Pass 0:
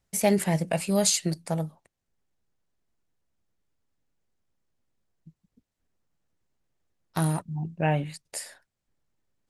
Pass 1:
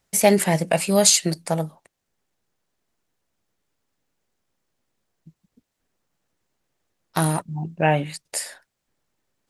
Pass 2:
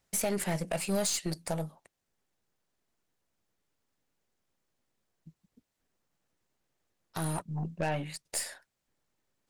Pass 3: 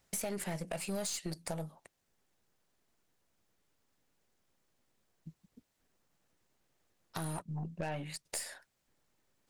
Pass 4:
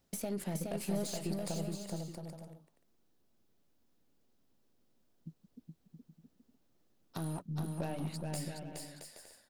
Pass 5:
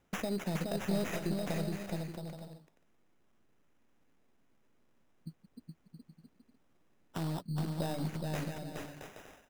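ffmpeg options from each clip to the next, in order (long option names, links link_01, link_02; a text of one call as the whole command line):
ffmpeg -i in.wav -af "lowshelf=frequency=170:gain=-10,volume=8dB" out.wav
ffmpeg -i in.wav -af "alimiter=limit=-12.5dB:level=0:latency=1:release=402,aeval=exprs='0.237*(cos(1*acos(clip(val(0)/0.237,-1,1)))-cos(1*PI/2))+0.0266*(cos(5*acos(clip(val(0)/0.237,-1,1)))-cos(5*PI/2))+0.015*(cos(8*acos(clip(val(0)/0.237,-1,1)))-cos(8*PI/2))':channel_layout=same,volume=-8.5dB" out.wav
ffmpeg -i in.wav -af "acompressor=threshold=-44dB:ratio=2.5,volume=3.5dB" out.wav
ffmpeg -i in.wav -af "equalizer=frequency=250:width_type=o:width=1:gain=6,equalizer=frequency=1000:width_type=o:width=1:gain=-3,equalizer=frequency=2000:width_type=o:width=1:gain=-7,equalizer=frequency=8000:width_type=o:width=1:gain=-6,aecho=1:1:420|672|823.2|913.9|968.4:0.631|0.398|0.251|0.158|0.1,volume=-1dB" out.wav
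ffmpeg -i in.wav -af "acrusher=samples=10:mix=1:aa=0.000001,volume=2.5dB" out.wav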